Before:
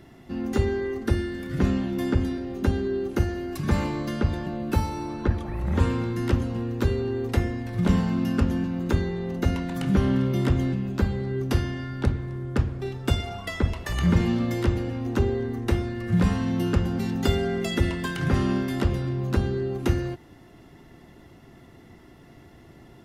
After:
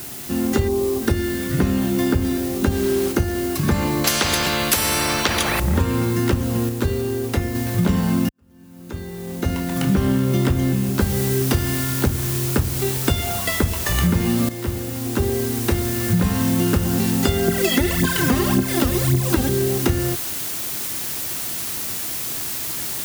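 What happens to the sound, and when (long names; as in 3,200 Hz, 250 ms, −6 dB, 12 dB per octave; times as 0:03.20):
0:00.68–0:01.02: time-frequency box erased 1,200–5,600 Hz
0:02.70–0:03.11: background noise pink −41 dBFS
0:04.04–0:05.60: every bin compressed towards the loudest bin 4 to 1
0:06.69–0:07.55: clip gain −4.5 dB
0:08.29–0:09.95: fade in quadratic
0:11.00: noise floor change −47 dB −40 dB
0:14.49–0:16.81: fade in equal-power, from −13.5 dB
0:17.48–0:19.49: phase shifter 1.8 Hz, delay 4.2 ms, feedback 69%
whole clip: high-pass filter 49 Hz; high-shelf EQ 6,200 Hz +6 dB; downward compressor, threshold −23 dBFS; level +8.5 dB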